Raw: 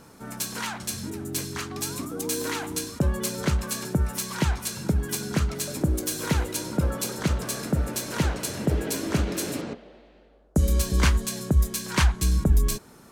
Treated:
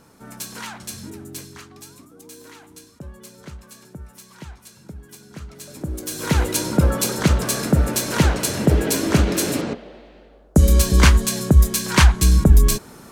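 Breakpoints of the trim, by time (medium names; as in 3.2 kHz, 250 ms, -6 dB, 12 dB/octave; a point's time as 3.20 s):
1.13 s -2 dB
2.05 s -14 dB
5.28 s -14 dB
6.03 s -2 dB
6.45 s +8 dB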